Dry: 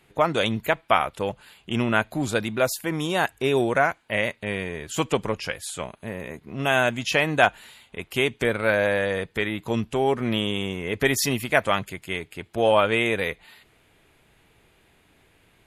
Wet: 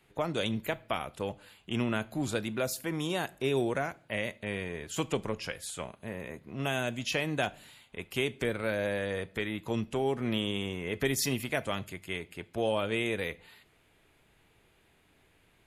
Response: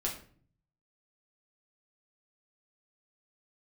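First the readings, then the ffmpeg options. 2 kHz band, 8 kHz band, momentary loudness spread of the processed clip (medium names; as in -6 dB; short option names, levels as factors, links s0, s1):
-11.0 dB, -6.0 dB, 9 LU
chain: -filter_complex "[0:a]acrossover=split=470|3000[s0][s1][s2];[s1]acompressor=threshold=0.0316:ratio=3[s3];[s0][s3][s2]amix=inputs=3:normalize=0,asplit=2[s4][s5];[1:a]atrim=start_sample=2205,adelay=23[s6];[s5][s6]afir=irnorm=-1:irlink=0,volume=0.0891[s7];[s4][s7]amix=inputs=2:normalize=0,volume=0.501"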